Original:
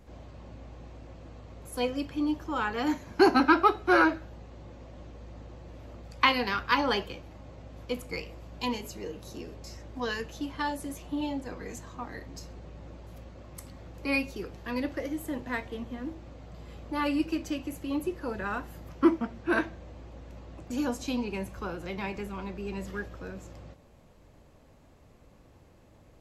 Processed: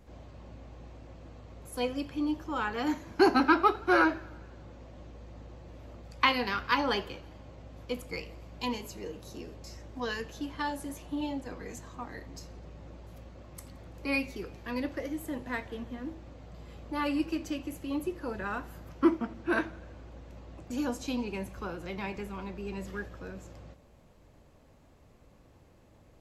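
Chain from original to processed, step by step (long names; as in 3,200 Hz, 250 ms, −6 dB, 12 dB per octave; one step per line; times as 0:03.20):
feedback echo with a swinging delay time 84 ms, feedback 67%, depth 107 cents, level −24 dB
level −2 dB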